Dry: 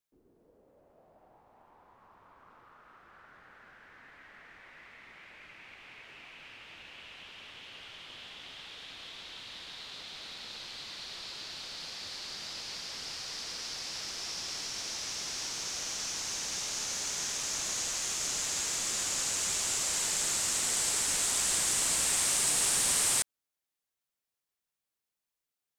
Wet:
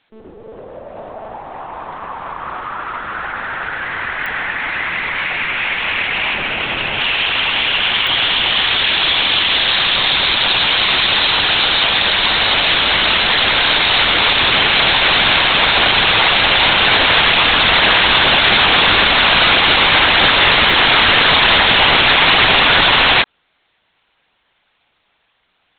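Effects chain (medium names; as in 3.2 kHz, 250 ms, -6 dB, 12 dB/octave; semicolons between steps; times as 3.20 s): 6.34–7.00 s: tilt EQ -2.5 dB/octave; monotone LPC vocoder at 8 kHz 220 Hz; bass shelf 210 Hz -11.5 dB; clicks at 4.26/8.07/20.70 s, -46 dBFS; loudness maximiser +34.5 dB; trim -1 dB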